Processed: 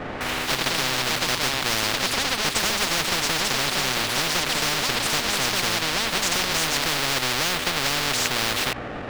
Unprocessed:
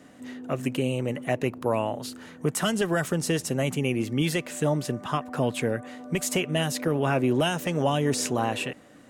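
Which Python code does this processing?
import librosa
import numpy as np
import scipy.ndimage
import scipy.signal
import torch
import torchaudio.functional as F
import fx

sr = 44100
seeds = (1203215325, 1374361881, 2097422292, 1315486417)

p1 = fx.halfwave_hold(x, sr)
p2 = scipy.signal.sosfilt(scipy.signal.butter(2, 2200.0, 'lowpass', fs=sr, output='sos'), p1)
p3 = fx.low_shelf(p2, sr, hz=130.0, db=5.5)
p4 = fx.notch(p3, sr, hz=990.0, q=6.7)
p5 = fx.quant_dither(p4, sr, seeds[0], bits=6, dither='none')
p6 = p4 + (p5 * 10.0 ** (-11.0 / 20.0))
p7 = fx.hum_notches(p6, sr, base_hz=60, count=2)
p8 = fx.echo_pitch(p7, sr, ms=85, semitones=4, count=2, db_per_echo=-6.0)
y = fx.spectral_comp(p8, sr, ratio=10.0)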